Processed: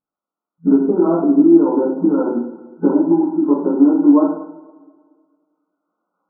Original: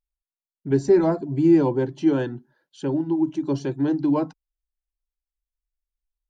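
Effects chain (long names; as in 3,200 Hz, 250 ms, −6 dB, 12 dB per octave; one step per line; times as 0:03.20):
spectral magnitudes quantised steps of 15 dB
camcorder AGC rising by 8.8 dB per second
brick-wall band-pass 170–1,500 Hz
downward compressor, threshold −27 dBFS, peak gain reduction 14 dB
coupled-rooms reverb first 0.63 s, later 1.9 s, from −18 dB, DRR −7 dB
level +8 dB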